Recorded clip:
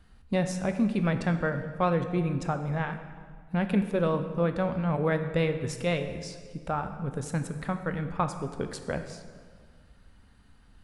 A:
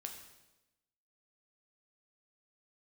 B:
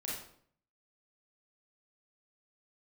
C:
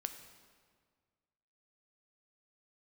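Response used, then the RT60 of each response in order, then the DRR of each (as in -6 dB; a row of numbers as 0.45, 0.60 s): C; 1.0, 0.60, 1.8 s; 3.0, -6.0, 7.5 dB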